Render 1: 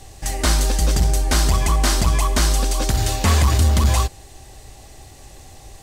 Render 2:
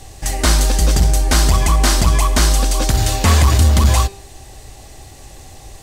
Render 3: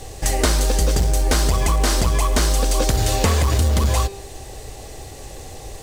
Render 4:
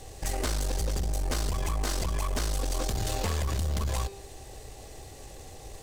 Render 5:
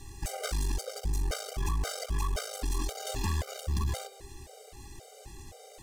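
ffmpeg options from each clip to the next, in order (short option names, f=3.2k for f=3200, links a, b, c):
-af "bandreject=f=197.6:t=h:w=4,bandreject=f=395.2:t=h:w=4,bandreject=f=592.8:t=h:w=4,bandreject=f=790.4:t=h:w=4,bandreject=f=988:t=h:w=4,bandreject=f=1.1856k:t=h:w=4,bandreject=f=1.3832k:t=h:w=4,bandreject=f=1.5808k:t=h:w=4,bandreject=f=1.7784k:t=h:w=4,bandreject=f=1.976k:t=h:w=4,bandreject=f=2.1736k:t=h:w=4,bandreject=f=2.3712k:t=h:w=4,bandreject=f=2.5688k:t=h:w=4,bandreject=f=2.7664k:t=h:w=4,bandreject=f=2.964k:t=h:w=4,bandreject=f=3.1616k:t=h:w=4,bandreject=f=3.3592k:t=h:w=4,bandreject=f=3.5568k:t=h:w=4,bandreject=f=3.7544k:t=h:w=4,bandreject=f=3.952k:t=h:w=4,bandreject=f=4.1496k:t=h:w=4,bandreject=f=4.3472k:t=h:w=4,bandreject=f=4.5448k:t=h:w=4,bandreject=f=4.7424k:t=h:w=4,bandreject=f=4.94k:t=h:w=4,bandreject=f=5.1376k:t=h:w=4,bandreject=f=5.3352k:t=h:w=4,bandreject=f=5.5328k:t=h:w=4,bandreject=f=5.7304k:t=h:w=4,bandreject=f=5.928k:t=h:w=4,volume=4dB"
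-filter_complex "[0:a]equalizer=f=470:t=o:w=0.53:g=9,asplit=2[a][b];[b]acrusher=bits=3:mode=log:mix=0:aa=0.000001,volume=-9.5dB[c];[a][c]amix=inputs=2:normalize=0,acompressor=threshold=-13dB:ratio=6,volume=-1dB"
-af "aeval=exprs='(tanh(7.08*val(0)+0.45)-tanh(0.45))/7.08':c=same,volume=-7.5dB"
-af "afftfilt=real='re*gt(sin(2*PI*1.9*pts/sr)*(1-2*mod(floor(b*sr/1024/400),2)),0)':imag='im*gt(sin(2*PI*1.9*pts/sr)*(1-2*mod(floor(b*sr/1024/400),2)),0)':win_size=1024:overlap=0.75"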